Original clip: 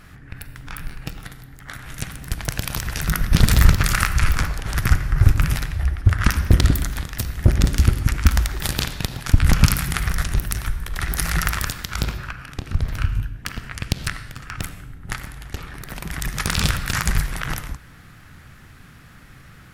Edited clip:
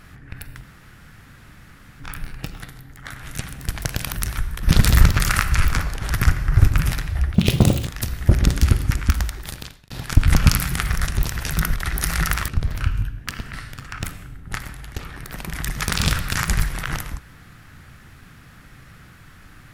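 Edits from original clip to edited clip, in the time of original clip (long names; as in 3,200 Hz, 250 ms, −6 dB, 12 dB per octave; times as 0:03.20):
0:00.63: splice in room tone 1.37 s
0:02.75–0:03.27: swap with 0:10.41–0:10.92
0:05.98–0:07.04: play speed 199%
0:07.97–0:09.07: fade out
0:11.64–0:12.66: remove
0:13.71–0:14.11: remove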